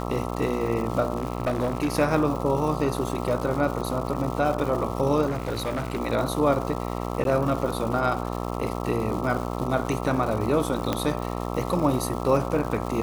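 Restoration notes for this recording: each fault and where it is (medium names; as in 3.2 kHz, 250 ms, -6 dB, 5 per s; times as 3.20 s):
buzz 60 Hz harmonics 22 -30 dBFS
crackle 350 per s -32 dBFS
1.17–1.95 s: clipped -19.5 dBFS
5.27–6.00 s: clipped -23 dBFS
7.24–7.25 s: dropout 12 ms
10.93 s: pop -10 dBFS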